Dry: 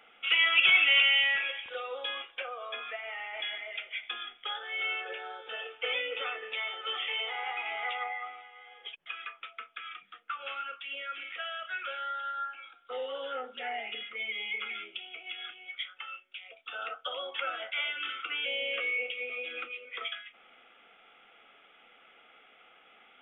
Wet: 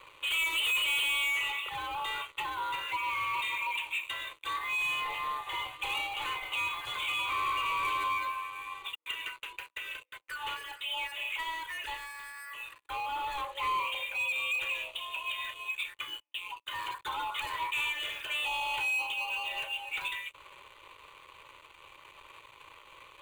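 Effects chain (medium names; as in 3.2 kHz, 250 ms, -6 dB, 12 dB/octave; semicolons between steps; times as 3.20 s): low-pass 1.6 kHz 12 dB/octave; frequency shift +310 Hz; in parallel at -2 dB: compression, threshold -45 dBFS, peak gain reduction 18 dB; on the sum: waveshaping leveller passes 5; static phaser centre 1.1 kHz, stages 8; trim -7 dB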